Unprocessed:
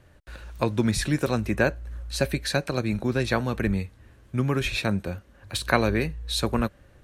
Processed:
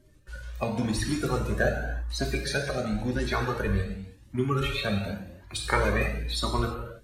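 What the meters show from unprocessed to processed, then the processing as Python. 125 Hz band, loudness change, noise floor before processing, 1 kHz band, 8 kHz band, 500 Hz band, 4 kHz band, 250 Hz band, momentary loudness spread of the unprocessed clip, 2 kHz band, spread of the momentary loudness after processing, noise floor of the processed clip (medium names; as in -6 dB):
-2.5 dB, -2.5 dB, -55 dBFS, -0.5 dB, -3.0 dB, -2.5 dB, -2.0 dB, -4.0 dB, 10 LU, -1.5 dB, 10 LU, -54 dBFS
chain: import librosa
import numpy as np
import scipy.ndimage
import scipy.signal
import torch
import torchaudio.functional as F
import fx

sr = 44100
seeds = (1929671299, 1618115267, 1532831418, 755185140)

y = fx.spec_quant(x, sr, step_db=30)
y = fx.rev_gated(y, sr, seeds[0], gate_ms=360, shape='falling', drr_db=1.0)
y = fx.comb_cascade(y, sr, direction='rising', hz=0.92)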